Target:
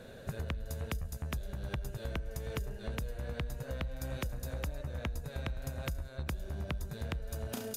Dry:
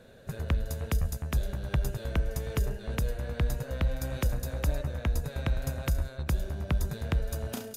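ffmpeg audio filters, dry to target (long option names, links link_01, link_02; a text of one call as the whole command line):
ffmpeg -i in.wav -af "acompressor=threshold=-38dB:ratio=12,volume=4dB" out.wav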